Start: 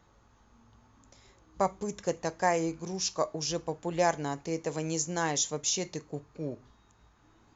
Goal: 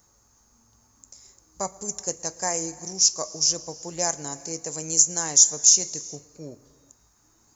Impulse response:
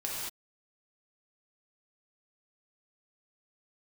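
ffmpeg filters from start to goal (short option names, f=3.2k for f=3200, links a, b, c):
-filter_complex "[0:a]asplit=2[a][b];[1:a]atrim=start_sample=2205,asetrate=33075,aresample=44100,adelay=114[c];[b][c]afir=irnorm=-1:irlink=0,volume=-24.5dB[d];[a][d]amix=inputs=2:normalize=0,aexciter=amount=13.6:drive=2:freq=5k,volume=-3.5dB"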